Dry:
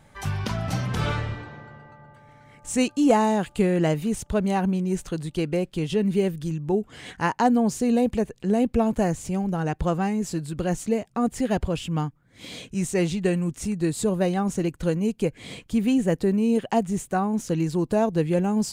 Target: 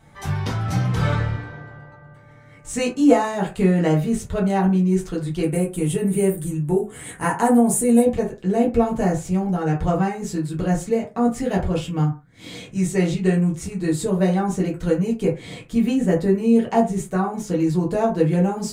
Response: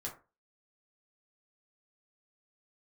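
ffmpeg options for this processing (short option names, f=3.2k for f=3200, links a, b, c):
-filter_complex "[0:a]asettb=1/sr,asplit=3[a][b][c];[a]atrim=end=5.434[d];[b]atrim=start=5.43:end=8.02,asetpts=PTS-STARTPTS,afade=t=in:d=0.004:c=qsin,afade=t=out:st=2.586:d=0.004:c=qsin,highshelf=f=7k:t=q:w=3:g=12[e];[c]atrim=start=8.016[f];[d][e]acrossfade=d=0.004:c1=hsin:c2=qsin[g];[g][f]acrossfade=d=0.004:c1=qsin:c2=hsin[h];[1:a]atrim=start_sample=2205,afade=t=out:st=0.26:d=0.01,atrim=end_sample=11907,asetrate=48510,aresample=44100[i];[h][i]afir=irnorm=-1:irlink=0,volume=4dB"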